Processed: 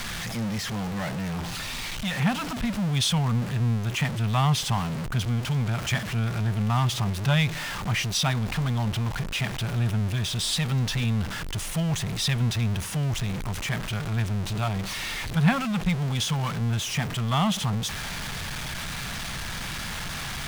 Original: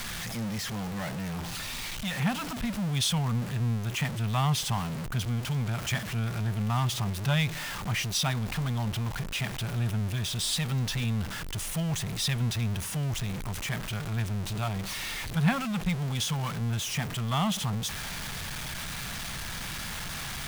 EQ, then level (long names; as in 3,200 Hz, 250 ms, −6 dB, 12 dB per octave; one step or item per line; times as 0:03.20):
high-shelf EQ 9,100 Hz −7 dB
+4.0 dB